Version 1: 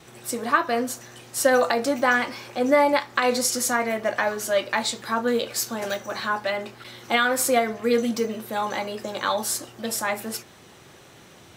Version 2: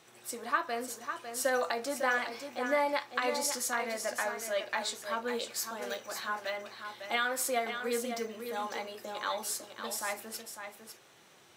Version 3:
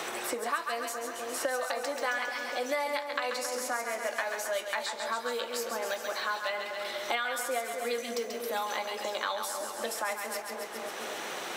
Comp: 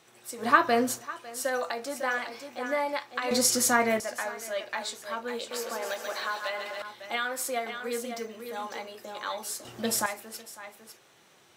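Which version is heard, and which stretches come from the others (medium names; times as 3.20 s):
2
0.42–0.99 s: from 1, crossfade 0.10 s
3.31–4.00 s: from 1
5.51–6.82 s: from 3
9.65–10.06 s: from 1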